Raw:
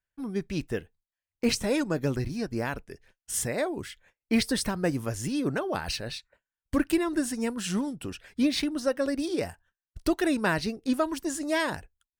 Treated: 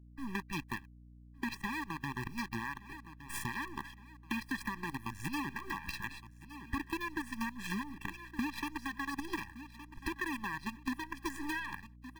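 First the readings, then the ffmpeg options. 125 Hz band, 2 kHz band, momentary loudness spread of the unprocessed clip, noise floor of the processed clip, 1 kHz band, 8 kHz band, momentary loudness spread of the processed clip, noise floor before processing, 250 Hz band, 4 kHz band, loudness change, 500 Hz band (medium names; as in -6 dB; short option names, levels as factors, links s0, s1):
-10.5 dB, -4.0 dB, 10 LU, -56 dBFS, -4.5 dB, -15.0 dB, 11 LU, under -85 dBFS, -12.5 dB, -12.0 dB, -10.5 dB, -22.0 dB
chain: -filter_complex "[0:a]lowshelf=f=230:g=3.5,alimiter=limit=0.112:level=0:latency=1:release=225,acrusher=bits=5:dc=4:mix=0:aa=0.000001,aeval=exprs='sgn(val(0))*max(abs(val(0))-0.00335,0)':c=same,equalizer=f=250:t=o:w=1:g=4,equalizer=f=500:t=o:w=1:g=-9,equalizer=f=1000:t=o:w=1:g=8,equalizer=f=2000:t=o:w=1:g=12,equalizer=f=8000:t=o:w=1:g=-4,asplit=2[s0][s1];[s1]aecho=0:1:1165|2330:0.0794|0.0278[s2];[s0][s2]amix=inputs=2:normalize=0,acompressor=threshold=0.0355:ratio=6,aeval=exprs='val(0)+0.00282*(sin(2*PI*60*n/s)+sin(2*PI*2*60*n/s)/2+sin(2*PI*3*60*n/s)/3+sin(2*PI*4*60*n/s)/4+sin(2*PI*5*60*n/s)/5)':c=same,afftfilt=real='re*eq(mod(floor(b*sr/1024/390),2),0)':imag='im*eq(mod(floor(b*sr/1024/390),2),0)':win_size=1024:overlap=0.75,volume=0.668"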